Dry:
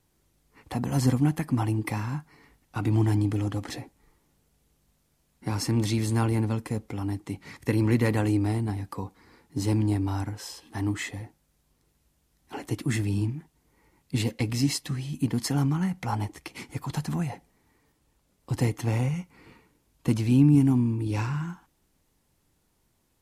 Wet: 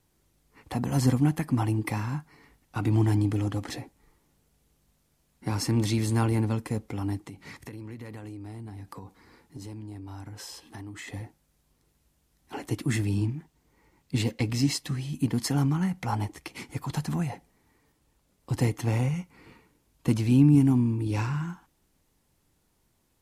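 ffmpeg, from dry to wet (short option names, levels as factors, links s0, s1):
-filter_complex "[0:a]asettb=1/sr,asplit=3[s0][s1][s2];[s0]atrim=end=7.244[s3];[s1]atrim=start=7.24:end=11.08,asetpts=PTS-STARTPTS,afade=t=in:d=0.004:c=qsin,afade=t=out:st=3.836:d=0.004:c=qsin,acompressor=threshold=0.0141:ratio=12:attack=3.2:release=140:knee=1:detection=peak[s4];[s2]atrim=start=11.076[s5];[s3][s4]acrossfade=d=0.004:c1=hsin:c2=qsin[s6];[s6][s5]acrossfade=d=0.004:c1=qsin:c2=hsin,asettb=1/sr,asplit=3[s7][s8][s9];[s7]atrim=end=13.154[s10];[s8]atrim=start=13.15:end=14.81,asetpts=PTS-STARTPTS,afade=t=in:d=0.004:c=qsin,afade=t=out:st=1.656:d=0.004:c=qsin,equalizer=f=11000:w=2.2:g=-6[s11];[s9]atrim=start=14.806[s12];[s10][s11]acrossfade=d=0.004:c1=hsin:c2=qsin[s13];[s13][s12]acrossfade=d=0.004:c1=qsin:c2=hsin"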